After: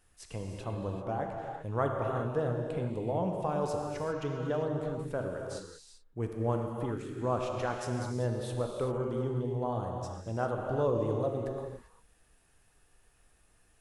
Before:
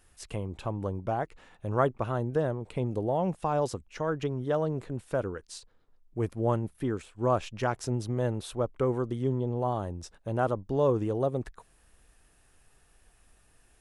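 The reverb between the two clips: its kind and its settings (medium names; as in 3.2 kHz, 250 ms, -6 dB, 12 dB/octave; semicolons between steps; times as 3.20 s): gated-style reverb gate 420 ms flat, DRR 1 dB; trim -5.5 dB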